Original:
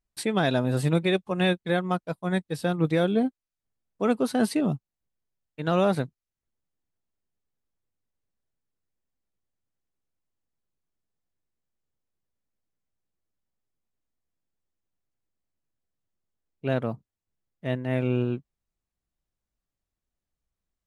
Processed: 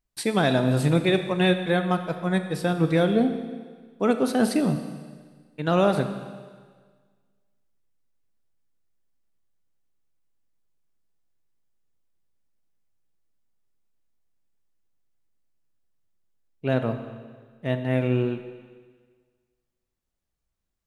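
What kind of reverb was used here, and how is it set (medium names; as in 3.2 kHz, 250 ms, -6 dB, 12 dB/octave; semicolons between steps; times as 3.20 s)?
Schroeder reverb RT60 1.6 s, combs from 27 ms, DRR 8 dB; trim +2 dB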